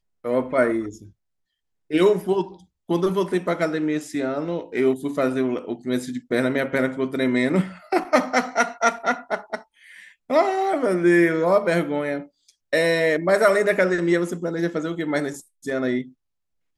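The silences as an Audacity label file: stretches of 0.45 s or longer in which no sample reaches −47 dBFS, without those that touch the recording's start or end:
1.110000	1.900000	silence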